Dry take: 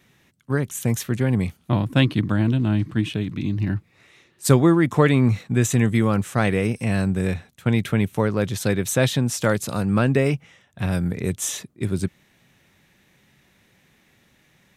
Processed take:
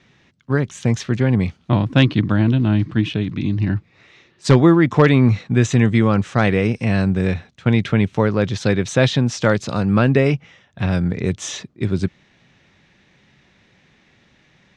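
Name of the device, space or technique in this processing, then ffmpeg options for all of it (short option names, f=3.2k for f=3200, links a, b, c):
synthesiser wavefolder: -af "aeval=exprs='0.531*(abs(mod(val(0)/0.531+3,4)-2)-1)':c=same,lowpass=f=5.8k:w=0.5412,lowpass=f=5.8k:w=1.3066,volume=4dB"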